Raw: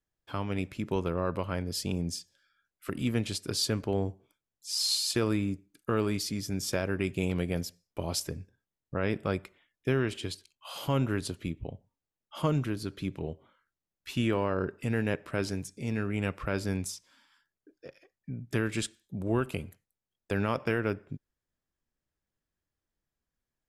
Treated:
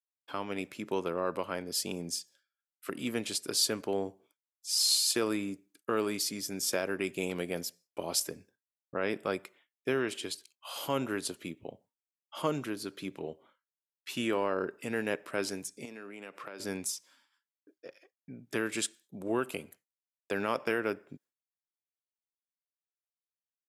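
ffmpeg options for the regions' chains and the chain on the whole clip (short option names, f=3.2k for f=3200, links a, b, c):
-filter_complex "[0:a]asettb=1/sr,asplit=3[a][b][c];[a]atrim=end=15.854[d];[b]atrim=start=15.85:end=16.6,asetpts=PTS-STARTPTS,afade=t=in:d=0.004:c=qsin,afade=t=out:st=0.746:d=0.004:c=qsin,highpass=210,acompressor=threshold=-39dB:ratio=5:attack=3.2:release=140:knee=1:detection=peak[e];[c]atrim=start=16.596[f];[d][e]acrossfade=d=0.004:c1=hsin:c2=qsin[g];[g][f]acrossfade=d=0.004:c1=qsin:c2=hsin,highpass=290,agate=range=-33dB:threshold=-58dB:ratio=3:detection=peak,adynamicequalizer=threshold=0.00398:dfrequency=6200:dqfactor=0.7:tfrequency=6200:tqfactor=0.7:attack=5:release=100:ratio=0.375:range=3:mode=boostabove:tftype=highshelf"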